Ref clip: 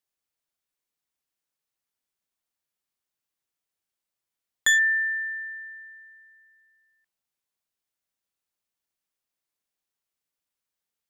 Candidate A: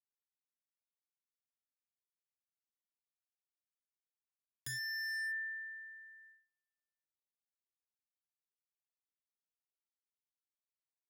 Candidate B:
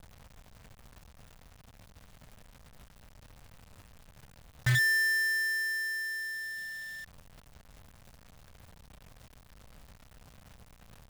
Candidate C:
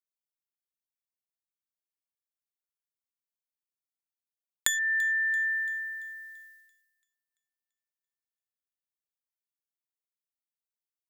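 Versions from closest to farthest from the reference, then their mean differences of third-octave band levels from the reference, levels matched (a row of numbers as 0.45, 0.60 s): C, A, B; 2.5, 3.5, 12.0 dB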